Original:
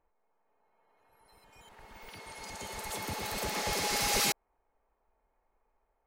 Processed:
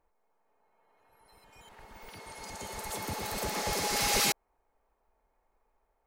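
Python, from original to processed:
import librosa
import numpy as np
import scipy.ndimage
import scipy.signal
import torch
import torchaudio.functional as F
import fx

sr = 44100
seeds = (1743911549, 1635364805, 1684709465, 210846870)

y = fx.peak_eq(x, sr, hz=2800.0, db=-3.5, octaves=1.5, at=(1.84, 3.97))
y = y * librosa.db_to_amplitude(1.5)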